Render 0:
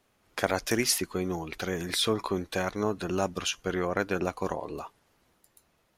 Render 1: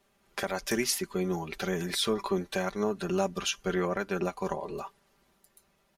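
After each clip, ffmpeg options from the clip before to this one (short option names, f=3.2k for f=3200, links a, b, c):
-af "aecho=1:1:5.1:0.69,alimiter=limit=-14.5dB:level=0:latency=1:release=379,volume=-1.5dB"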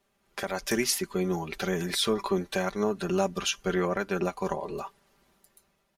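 -af "dynaudnorm=f=130:g=7:m=5.5dB,volume=-3.5dB"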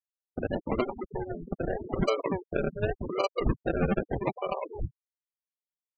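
-af "highpass=f=430:w=0.5412,highpass=f=430:w=1.3066,equalizer=f=830:t=q:w=4:g=-5,equalizer=f=1.2k:t=q:w=4:g=10,equalizer=f=2.1k:t=q:w=4:g=7,equalizer=f=3k:t=q:w=4:g=6,lowpass=f=3.6k:w=0.5412,lowpass=f=3.6k:w=1.3066,acrusher=samples=35:mix=1:aa=0.000001:lfo=1:lforange=21:lforate=0.84,afftfilt=real='re*gte(hypot(re,im),0.0447)':imag='im*gte(hypot(re,im),0.0447)':win_size=1024:overlap=0.75,volume=1dB"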